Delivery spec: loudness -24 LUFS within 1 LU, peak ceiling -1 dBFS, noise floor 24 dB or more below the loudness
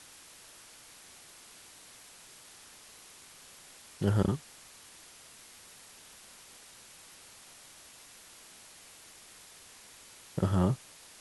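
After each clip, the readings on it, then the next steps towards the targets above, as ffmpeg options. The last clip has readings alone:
noise floor -54 dBFS; noise floor target -55 dBFS; loudness -31.0 LUFS; peak level -12.5 dBFS; loudness target -24.0 LUFS
-> -af "afftdn=nr=6:nf=-54"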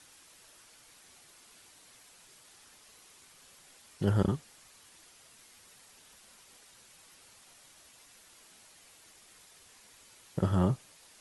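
noise floor -59 dBFS; loudness -31.0 LUFS; peak level -12.5 dBFS; loudness target -24.0 LUFS
-> -af "volume=2.24"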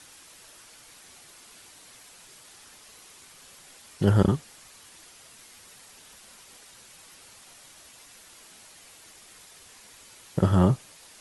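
loudness -24.0 LUFS; peak level -5.5 dBFS; noise floor -52 dBFS

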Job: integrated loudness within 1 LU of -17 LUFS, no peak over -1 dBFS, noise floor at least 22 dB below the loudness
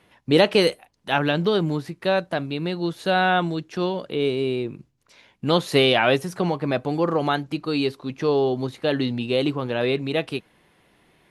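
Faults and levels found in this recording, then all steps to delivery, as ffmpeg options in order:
loudness -23.0 LUFS; peak level -4.0 dBFS; loudness target -17.0 LUFS
-> -af "volume=2,alimiter=limit=0.891:level=0:latency=1"

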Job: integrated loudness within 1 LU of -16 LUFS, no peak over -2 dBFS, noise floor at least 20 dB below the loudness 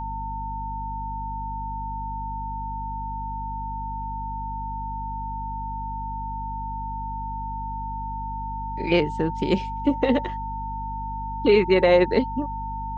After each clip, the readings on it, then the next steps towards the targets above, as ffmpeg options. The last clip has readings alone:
hum 50 Hz; highest harmonic 250 Hz; hum level -31 dBFS; steady tone 900 Hz; tone level -30 dBFS; loudness -27.0 LUFS; peak level -6.5 dBFS; loudness target -16.0 LUFS
-> -af "bandreject=f=50:t=h:w=4,bandreject=f=100:t=h:w=4,bandreject=f=150:t=h:w=4,bandreject=f=200:t=h:w=4,bandreject=f=250:t=h:w=4"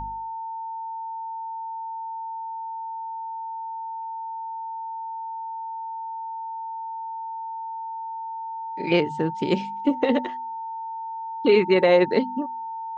hum not found; steady tone 900 Hz; tone level -30 dBFS
-> -af "bandreject=f=900:w=30"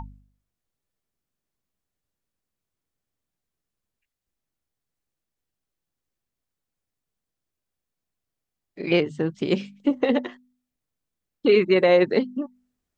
steady tone not found; loudness -22.0 LUFS; peak level -7.0 dBFS; loudness target -16.0 LUFS
-> -af "volume=2,alimiter=limit=0.794:level=0:latency=1"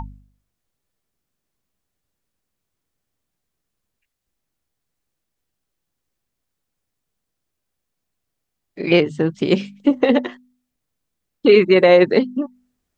loudness -16.0 LUFS; peak level -2.0 dBFS; noise floor -79 dBFS

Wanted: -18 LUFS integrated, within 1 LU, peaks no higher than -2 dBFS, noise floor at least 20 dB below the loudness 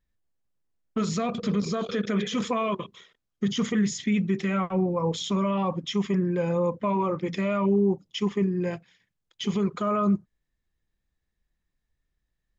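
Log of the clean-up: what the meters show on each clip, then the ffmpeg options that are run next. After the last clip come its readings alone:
loudness -27.0 LUFS; peak level -14.0 dBFS; loudness target -18.0 LUFS
-> -af "volume=2.82"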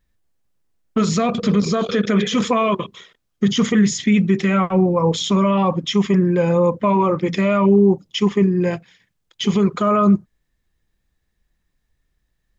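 loudness -18.0 LUFS; peak level -5.0 dBFS; noise floor -72 dBFS

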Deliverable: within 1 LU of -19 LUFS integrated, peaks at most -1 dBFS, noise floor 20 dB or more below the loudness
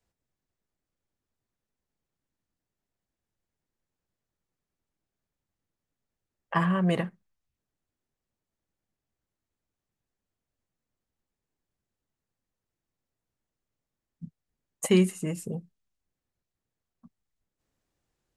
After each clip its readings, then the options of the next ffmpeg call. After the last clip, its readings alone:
loudness -27.5 LUFS; peak level -10.5 dBFS; loudness target -19.0 LUFS
-> -af "volume=2.66"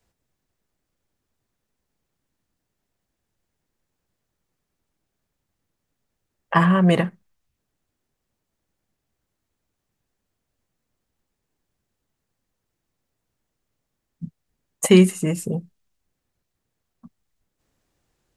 loudness -19.0 LUFS; peak level -2.0 dBFS; noise floor -80 dBFS

